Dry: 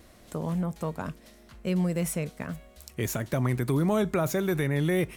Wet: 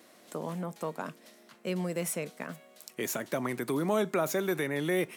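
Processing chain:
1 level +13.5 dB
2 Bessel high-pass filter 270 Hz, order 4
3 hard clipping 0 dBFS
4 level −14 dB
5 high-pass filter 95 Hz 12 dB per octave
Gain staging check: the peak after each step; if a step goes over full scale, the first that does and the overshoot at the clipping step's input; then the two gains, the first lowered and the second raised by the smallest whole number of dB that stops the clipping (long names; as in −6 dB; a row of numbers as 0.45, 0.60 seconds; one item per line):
−2.5, −3.0, −3.0, −17.0, −17.0 dBFS
no step passes full scale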